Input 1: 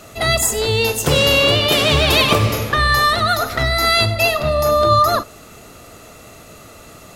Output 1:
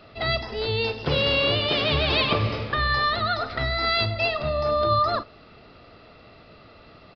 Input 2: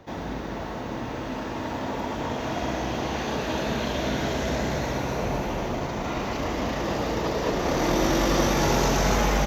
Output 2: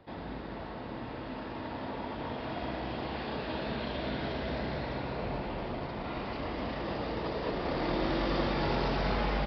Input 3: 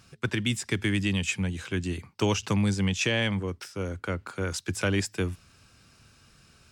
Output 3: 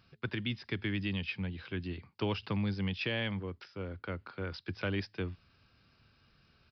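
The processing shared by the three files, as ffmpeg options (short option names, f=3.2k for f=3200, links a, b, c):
-af "aresample=11025,aresample=44100,volume=-8dB"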